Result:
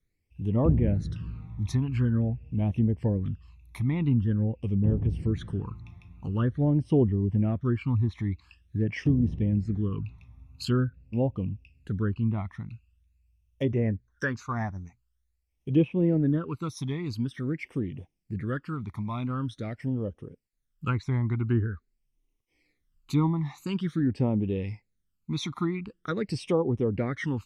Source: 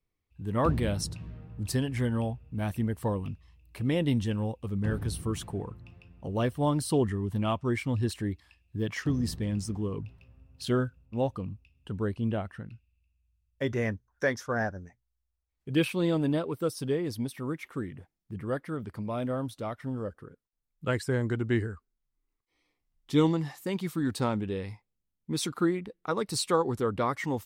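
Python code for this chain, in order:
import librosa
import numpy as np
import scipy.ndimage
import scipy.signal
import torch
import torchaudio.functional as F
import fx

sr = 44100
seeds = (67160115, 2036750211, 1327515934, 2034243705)

y = fx.phaser_stages(x, sr, stages=12, low_hz=490.0, high_hz=1500.0, hz=0.46, feedback_pct=25)
y = fx.env_lowpass_down(y, sr, base_hz=1100.0, full_db=-25.0)
y = fx.dynamic_eq(y, sr, hz=660.0, q=0.71, threshold_db=-43.0, ratio=4.0, max_db=-3)
y = y * librosa.db_to_amplitude(5.0)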